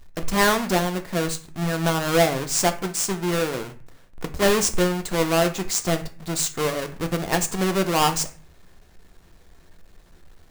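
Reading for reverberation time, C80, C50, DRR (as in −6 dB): 0.40 s, 18.0 dB, 14.0 dB, 7.0 dB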